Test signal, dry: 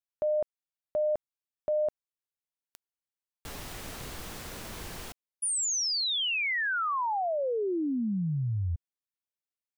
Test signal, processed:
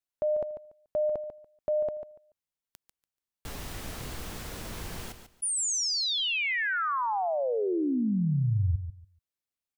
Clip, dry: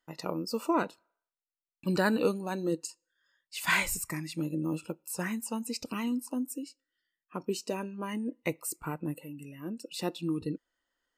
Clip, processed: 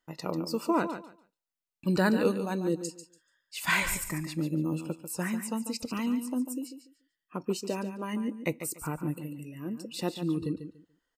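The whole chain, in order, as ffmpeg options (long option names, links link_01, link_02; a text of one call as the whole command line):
ffmpeg -i in.wav -af "lowshelf=frequency=230:gain=4.5,aecho=1:1:144|288|432:0.316|0.0632|0.0126" out.wav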